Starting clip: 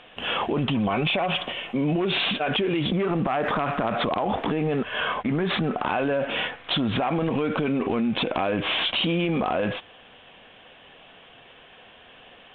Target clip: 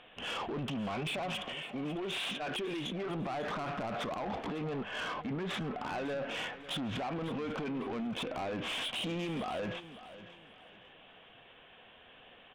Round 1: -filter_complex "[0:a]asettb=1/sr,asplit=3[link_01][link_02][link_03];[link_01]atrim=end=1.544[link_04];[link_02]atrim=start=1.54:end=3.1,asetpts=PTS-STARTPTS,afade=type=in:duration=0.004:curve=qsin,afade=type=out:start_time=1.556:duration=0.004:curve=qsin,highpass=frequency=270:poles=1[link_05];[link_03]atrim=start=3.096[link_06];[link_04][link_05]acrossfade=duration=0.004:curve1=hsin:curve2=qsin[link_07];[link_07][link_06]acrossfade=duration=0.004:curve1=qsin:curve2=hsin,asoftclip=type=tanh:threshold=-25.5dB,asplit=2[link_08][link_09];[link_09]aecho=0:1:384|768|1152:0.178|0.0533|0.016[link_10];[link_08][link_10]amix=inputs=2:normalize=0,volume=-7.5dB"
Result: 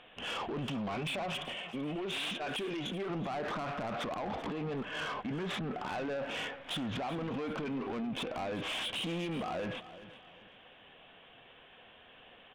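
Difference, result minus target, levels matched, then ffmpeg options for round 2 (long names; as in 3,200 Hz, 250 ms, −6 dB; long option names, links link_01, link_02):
echo 166 ms early
-filter_complex "[0:a]asettb=1/sr,asplit=3[link_01][link_02][link_03];[link_01]atrim=end=1.544[link_04];[link_02]atrim=start=1.54:end=3.1,asetpts=PTS-STARTPTS,afade=type=in:duration=0.004:curve=qsin,afade=type=out:start_time=1.556:duration=0.004:curve=qsin,highpass=frequency=270:poles=1[link_05];[link_03]atrim=start=3.096[link_06];[link_04][link_05]acrossfade=duration=0.004:curve1=hsin:curve2=qsin[link_07];[link_07][link_06]acrossfade=duration=0.004:curve1=qsin:curve2=hsin,asoftclip=type=tanh:threshold=-25.5dB,asplit=2[link_08][link_09];[link_09]aecho=0:1:550|1100|1650:0.178|0.0533|0.016[link_10];[link_08][link_10]amix=inputs=2:normalize=0,volume=-7.5dB"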